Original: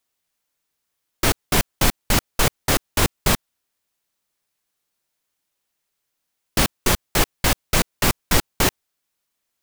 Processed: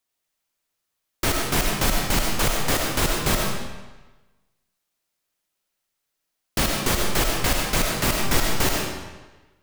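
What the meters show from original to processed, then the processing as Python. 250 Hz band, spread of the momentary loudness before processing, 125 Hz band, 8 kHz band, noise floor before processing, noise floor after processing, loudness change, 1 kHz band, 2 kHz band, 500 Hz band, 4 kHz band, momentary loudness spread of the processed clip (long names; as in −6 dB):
−1.5 dB, 3 LU, −2.0 dB, −1.5 dB, −78 dBFS, −79 dBFS, −2.0 dB, −1.0 dB, −1.0 dB, −1.0 dB, −1.0 dB, 8 LU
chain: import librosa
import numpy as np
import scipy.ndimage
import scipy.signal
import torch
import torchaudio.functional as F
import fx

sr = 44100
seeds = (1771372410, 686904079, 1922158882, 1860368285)

y = fx.rev_freeverb(x, sr, rt60_s=1.2, hf_ratio=0.9, predelay_ms=45, drr_db=0.0)
y = y * 10.0 ** (-4.0 / 20.0)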